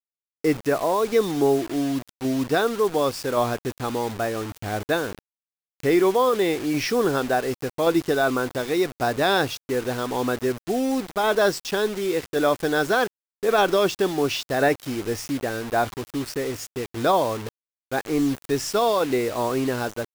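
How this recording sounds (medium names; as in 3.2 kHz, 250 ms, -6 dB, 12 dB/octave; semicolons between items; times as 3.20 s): tremolo saw down 0.89 Hz, depth 35%; a quantiser's noise floor 6-bit, dither none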